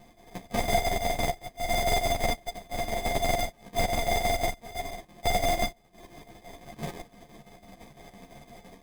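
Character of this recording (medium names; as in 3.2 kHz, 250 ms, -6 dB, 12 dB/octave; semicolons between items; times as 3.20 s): a buzz of ramps at a fixed pitch in blocks of 64 samples; chopped level 5.9 Hz, depth 60%, duty 70%; aliases and images of a low sample rate 1.4 kHz, jitter 0%; a shimmering, thickened sound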